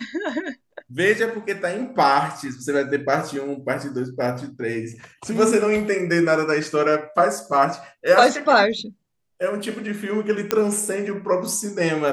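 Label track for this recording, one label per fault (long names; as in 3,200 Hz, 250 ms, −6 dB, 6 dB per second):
10.510000	10.510000	click −4 dBFS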